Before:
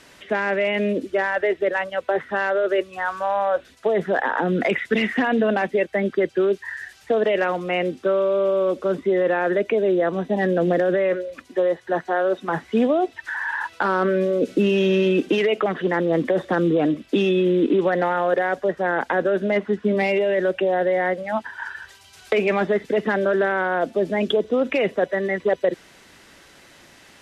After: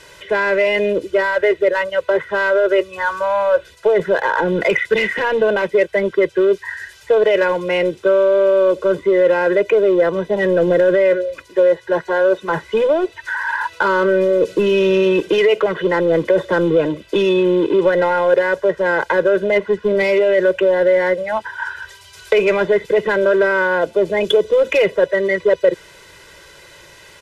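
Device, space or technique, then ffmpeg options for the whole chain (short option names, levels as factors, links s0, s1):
parallel distortion: -filter_complex "[0:a]asplit=2[s0][s1];[s1]asoftclip=type=hard:threshold=0.0841,volume=0.473[s2];[s0][s2]amix=inputs=2:normalize=0,asettb=1/sr,asplit=3[s3][s4][s5];[s3]atrim=end=24.244[s6];[s4]atrim=start=24.24:end=24.84,asetpts=PTS-STARTPTS,afade=t=in:d=0.004:c=qsin,afade=t=out:st=0.596:d=0.004:c=qsin,highshelf=f=4500:g=6.5[s7];[s5]atrim=start=24.836[s8];[s6][s7]acrossfade=d=0.004:c1=hsin:c2=qsin[s9];[s9][s8]acrossfade=d=0.004:c1=qsin:c2=hsin,aecho=1:1:2:0.96"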